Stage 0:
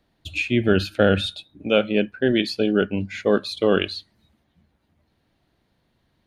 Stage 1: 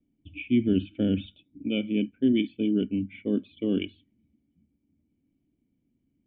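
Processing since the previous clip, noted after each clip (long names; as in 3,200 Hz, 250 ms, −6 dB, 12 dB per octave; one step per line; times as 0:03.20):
formant resonators in series i
low-pass that shuts in the quiet parts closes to 1,800 Hz, open at −23.5 dBFS
level +3.5 dB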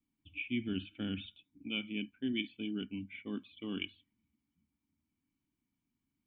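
low shelf with overshoot 740 Hz −9.5 dB, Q 3
level −2.5 dB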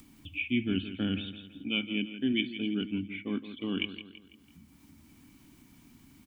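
upward compression, threshold −45 dBFS
on a send: repeating echo 166 ms, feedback 43%, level −12 dB
on the sum: level +6.5 dB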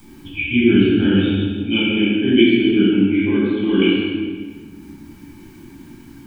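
hollow resonant body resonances 360/870/1,600 Hz, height 11 dB, ringing for 40 ms
convolution reverb RT60 1.5 s, pre-delay 10 ms, DRR −10 dB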